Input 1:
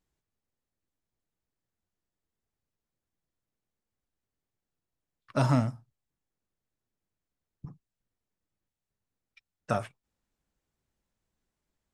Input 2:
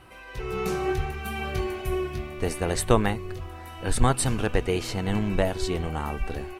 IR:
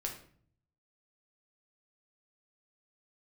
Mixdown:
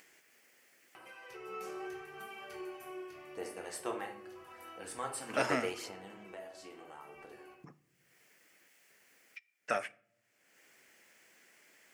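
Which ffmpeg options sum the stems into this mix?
-filter_complex "[0:a]equalizer=f=125:t=o:w=1:g=-3,equalizer=f=1000:t=o:w=1:g=-8,equalizer=f=2000:t=o:w=1:g=11,volume=0.794,asplit=3[s0][s1][s2];[s1]volume=0.188[s3];[1:a]aphaser=in_gain=1:out_gain=1:delay=3.8:decay=0.38:speed=0.8:type=sinusoidal,adelay=950,volume=0.299,afade=t=out:st=5.47:d=0.78:silence=0.421697,asplit=2[s4][s5];[s5]volume=0.596[s6];[s2]apad=whole_len=332544[s7];[s4][s7]sidechaingate=range=0.0224:threshold=0.00112:ratio=16:detection=peak[s8];[2:a]atrim=start_sample=2205[s9];[s3][s6]amix=inputs=2:normalize=0[s10];[s10][s9]afir=irnorm=-1:irlink=0[s11];[s0][s8][s11]amix=inputs=3:normalize=0,highpass=420,equalizer=f=3800:w=5:g=-8.5,acompressor=mode=upward:threshold=0.00631:ratio=2.5"

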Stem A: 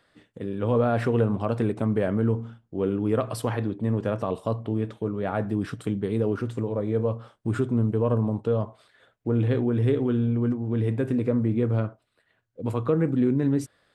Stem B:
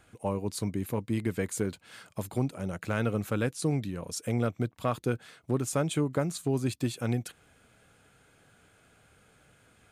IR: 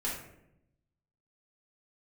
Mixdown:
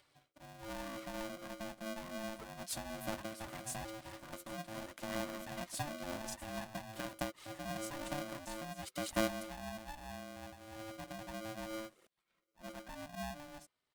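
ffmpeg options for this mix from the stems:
-filter_complex "[0:a]acompressor=mode=upward:threshold=0.0126:ratio=2.5,asplit=2[s0][s1];[s1]adelay=3.3,afreqshift=-0.28[s2];[s0][s2]amix=inputs=2:normalize=1,volume=0.2,asplit=2[s3][s4];[1:a]acompressor=threshold=0.0282:ratio=2.5,aphaser=in_gain=1:out_gain=1:delay=4:decay=0.67:speed=1:type=sinusoidal,adelay=2150,volume=0.794[s5];[s4]apad=whole_len=532169[s6];[s5][s6]sidechaincompress=threshold=0.00562:ratio=10:attack=5.8:release=573[s7];[s3][s7]amix=inputs=2:normalize=0,equalizer=f=125:t=o:w=1:g=-5,equalizer=f=500:t=o:w=1:g=-10,equalizer=f=1000:t=o:w=1:g=-3,equalizer=f=2000:t=o:w=1:g=-5,aeval=exprs='val(0)*sgn(sin(2*PI*440*n/s))':c=same"

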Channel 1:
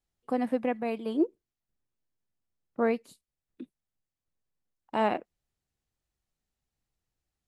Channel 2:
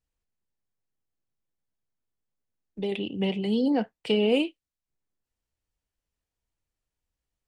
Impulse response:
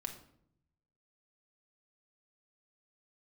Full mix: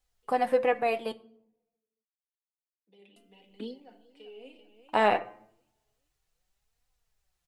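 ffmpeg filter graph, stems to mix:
-filter_complex "[0:a]equalizer=f=240:t=o:w=1.1:g=-14,bandreject=f=171.6:t=h:w=4,bandreject=f=343.2:t=h:w=4,bandreject=f=514.8:t=h:w=4,bandreject=f=686.4:t=h:w=4,bandreject=f=858:t=h:w=4,bandreject=f=1029.6:t=h:w=4,bandreject=f=1201.2:t=h:w=4,bandreject=f=1372.8:t=h:w=4,bandreject=f=1544.4:t=h:w=4,bandreject=f=1716:t=h:w=4,bandreject=f=1887.6:t=h:w=4,bandreject=f=2059.2:t=h:w=4,bandreject=f=2230.8:t=h:w=4,bandreject=f=2402.4:t=h:w=4,acontrast=79,volume=1.26,asplit=3[s0][s1][s2];[s0]atrim=end=1.12,asetpts=PTS-STARTPTS,afade=t=out:st=1.116:d=0.004:c=hsin[s3];[s1]atrim=start=1.12:end=3.16,asetpts=PTS-STARTPTS,volume=0[s4];[s2]atrim=start=3.16,asetpts=PTS-STARTPTS,afade=t=in:d=0.004:c=hsin[s5];[s3][s4][s5]concat=n=3:v=0:a=1,asplit=3[s6][s7][s8];[s7]volume=0.447[s9];[1:a]highpass=350,adelay=100,volume=0.376,asplit=3[s10][s11][s12];[s11]volume=0.237[s13];[s12]volume=0.075[s14];[s8]apad=whole_len=334083[s15];[s10][s15]sidechaingate=range=0.0224:threshold=0.00224:ratio=16:detection=peak[s16];[2:a]atrim=start_sample=2205[s17];[s9][s13]amix=inputs=2:normalize=0[s18];[s18][s17]afir=irnorm=-1:irlink=0[s19];[s14]aecho=0:1:388|776|1164|1552|1940:1|0.35|0.122|0.0429|0.015[s20];[s6][s16][s19][s20]amix=inputs=4:normalize=0,flanger=delay=3.8:depth=6.4:regen=41:speed=0.29:shape=triangular"

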